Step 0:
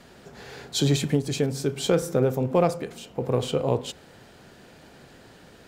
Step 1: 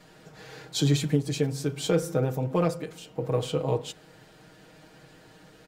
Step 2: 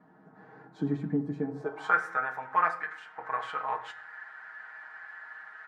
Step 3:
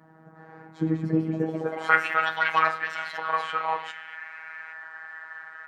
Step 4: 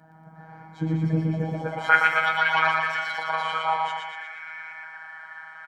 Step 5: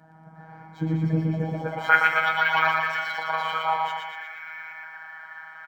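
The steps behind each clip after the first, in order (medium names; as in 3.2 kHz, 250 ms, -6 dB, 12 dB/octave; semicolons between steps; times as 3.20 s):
comb 6.4 ms, depth 83%; trim -5 dB
high-order bell 1.2 kHz +16 dB; band-pass sweep 250 Hz -> 1.7 kHz, 1.45–1.98 s; on a send at -7 dB: reverberation RT60 0.50 s, pre-delay 5 ms
dynamic bell 2.8 kHz, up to +6 dB, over -50 dBFS, Q 2; ever faster or slower copies 488 ms, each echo +5 st, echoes 3, each echo -6 dB; robot voice 160 Hz; trim +6.5 dB
comb 1.3 ms, depth 61%; on a send: feedback delay 118 ms, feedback 53%, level -3 dB
decimation joined by straight lines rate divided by 2×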